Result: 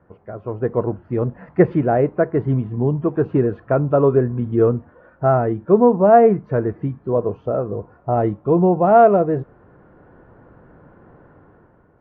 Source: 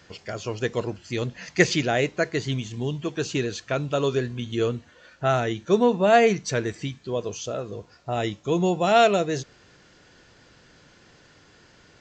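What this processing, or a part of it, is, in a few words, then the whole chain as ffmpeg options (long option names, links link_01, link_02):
action camera in a waterproof case: -af "lowpass=frequency=1200:width=0.5412,lowpass=frequency=1200:width=1.3066,dynaudnorm=framelen=180:gausssize=7:maxgain=9.5dB" -ar 32000 -c:a aac -b:a 48k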